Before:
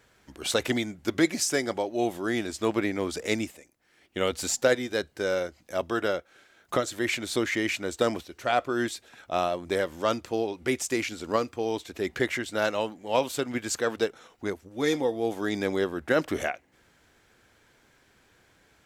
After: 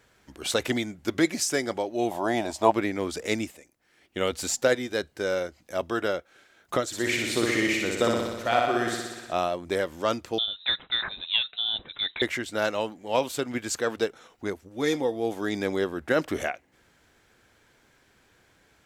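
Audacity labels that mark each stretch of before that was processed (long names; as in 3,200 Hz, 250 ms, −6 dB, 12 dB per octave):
2.110000	2.720000	flat-topped bell 770 Hz +15.5 dB 1 octave
6.860000	9.330000	flutter between parallel walls apart 10.4 metres, dies away in 1.2 s
10.380000	12.220000	voice inversion scrambler carrier 3,900 Hz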